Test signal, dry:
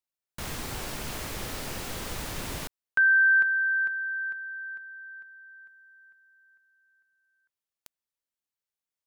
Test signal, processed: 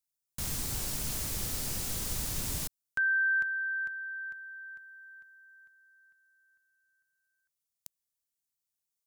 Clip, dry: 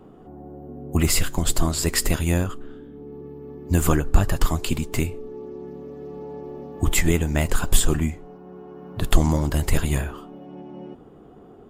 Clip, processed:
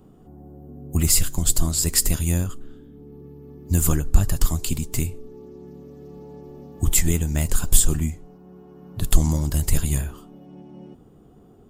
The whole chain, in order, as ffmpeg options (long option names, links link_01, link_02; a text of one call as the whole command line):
ffmpeg -i in.wav -af "bass=frequency=250:gain=9,treble=frequency=4000:gain=14,volume=-8dB" out.wav